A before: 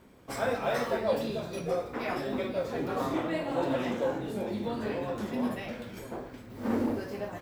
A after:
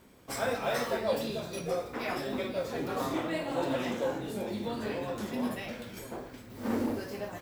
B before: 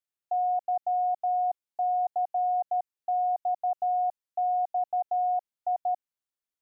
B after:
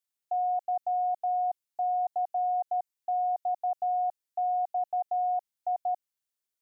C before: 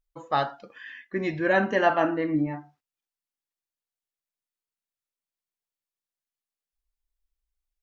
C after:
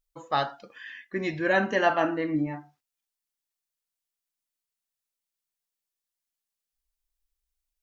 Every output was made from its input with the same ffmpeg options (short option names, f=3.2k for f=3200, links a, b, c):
-af "highshelf=f=3.1k:g=7.5,volume=-2dB"